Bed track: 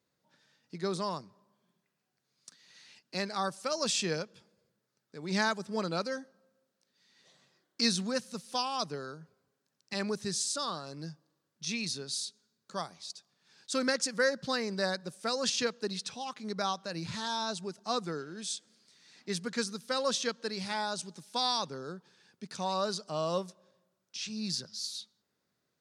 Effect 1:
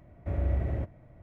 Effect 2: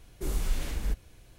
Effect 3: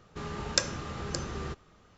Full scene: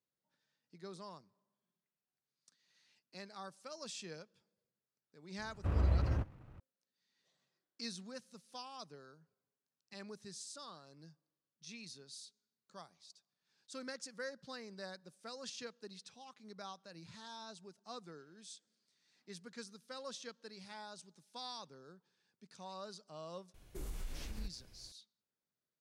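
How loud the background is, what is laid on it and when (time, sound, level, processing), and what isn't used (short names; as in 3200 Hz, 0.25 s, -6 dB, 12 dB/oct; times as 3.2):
bed track -16 dB
5.38 add 1 -2.5 dB + minimum comb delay 0.71 ms
23.54 add 2 -7.5 dB + compressor 2:1, threshold -36 dBFS
not used: 3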